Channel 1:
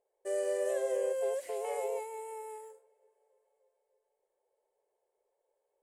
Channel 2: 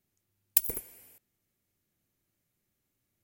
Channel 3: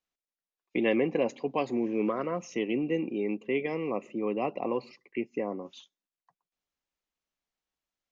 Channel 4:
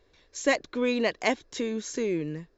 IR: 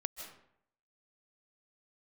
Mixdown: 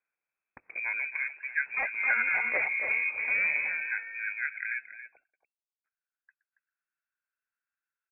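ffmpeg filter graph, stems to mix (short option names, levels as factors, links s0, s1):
-filter_complex "[0:a]aeval=exprs='val(0)*gte(abs(val(0)),0.00266)':c=same,bandpass=f=760:t=q:w=1.1:csg=0,adelay=1700,volume=1.19,asplit=2[s0][s1];[s1]volume=0.158[s2];[1:a]highpass=260,volume=0.596[s3];[2:a]lowpass=f=1200:t=q:w=5.4,volume=0.376,asplit=3[s4][s5][s6];[s4]atrim=end=5.17,asetpts=PTS-STARTPTS,afade=t=out:st=5.166:d=0.004:c=hsin[s7];[s5]atrim=start=5.17:end=5.84,asetpts=PTS-STARTPTS,volume=0[s8];[s6]atrim=start=5.84,asetpts=PTS-STARTPTS,afade=t=in:d=0.004:c=hsin[s9];[s7][s8][s9]concat=n=3:v=0:a=1,asplit=3[s10][s11][s12];[s11]volume=0.251[s13];[3:a]asoftclip=type=hard:threshold=0.0562,adelay=1300,volume=1.33,asplit=2[s14][s15];[s15]volume=0.335[s16];[s12]apad=whole_len=170852[s17];[s14][s17]sidechaincompress=threshold=0.0158:ratio=8:attack=16:release=508[s18];[s2][s13][s16]amix=inputs=3:normalize=0,aecho=0:1:278:1[s19];[s0][s3][s10][s18][s19]amix=inputs=5:normalize=0,equalizer=f=1200:w=3.2:g=5,lowpass=f=2300:t=q:w=0.5098,lowpass=f=2300:t=q:w=0.6013,lowpass=f=2300:t=q:w=0.9,lowpass=f=2300:t=q:w=2.563,afreqshift=-2700"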